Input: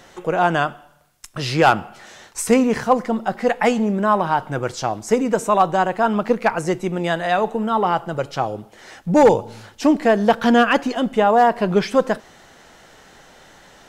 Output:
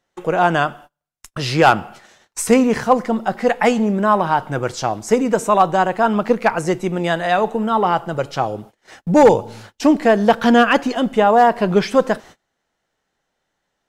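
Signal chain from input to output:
noise gate −40 dBFS, range −29 dB
level +2 dB

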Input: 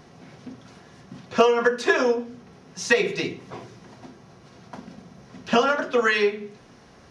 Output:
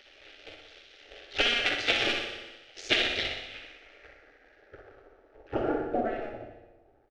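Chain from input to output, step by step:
sub-harmonics by changed cycles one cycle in 2, muted
low-pass filter sweep 3,100 Hz → 560 Hz, 0:03.30–0:05.90
gate on every frequency bin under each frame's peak −10 dB weak
phaser with its sweep stopped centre 420 Hz, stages 4
repeating echo 62 ms, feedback 56%, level −7 dB
reverb whose tail is shaped and stops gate 460 ms falling, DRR 7.5 dB
level +3.5 dB

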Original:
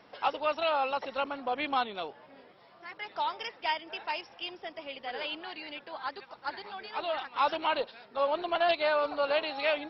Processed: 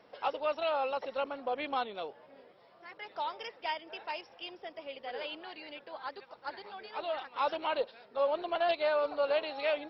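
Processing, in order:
parametric band 510 Hz +6.5 dB 0.76 octaves
level −5.5 dB

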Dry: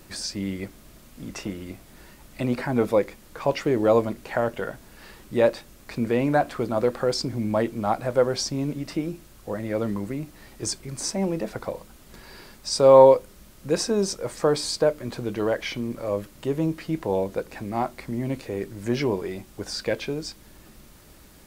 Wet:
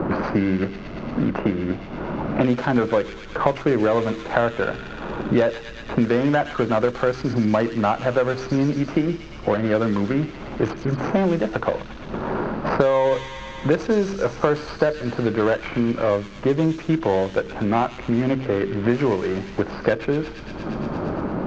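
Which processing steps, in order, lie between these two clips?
running median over 25 samples
Butterworth low-pass 6,900 Hz 48 dB per octave
parametric band 1,500 Hz +8 dB 0.9 octaves
hum removal 65.55 Hz, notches 7
low-pass that shuts in the quiet parts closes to 1,100 Hz, open at −20 dBFS
delay with a high-pass on its return 116 ms, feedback 60%, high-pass 3,100 Hz, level −3.5 dB
boost into a limiter +10.5 dB
multiband upward and downward compressor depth 100%
level −5.5 dB

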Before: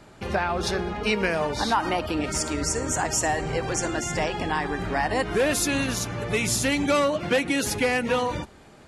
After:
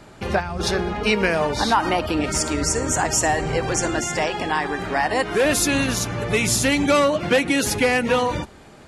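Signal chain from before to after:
0:00.40–0:00.60: gain on a spectral selection 210–4,500 Hz −10 dB
0:04.05–0:05.45: low-shelf EQ 170 Hz −10 dB
level +4.5 dB

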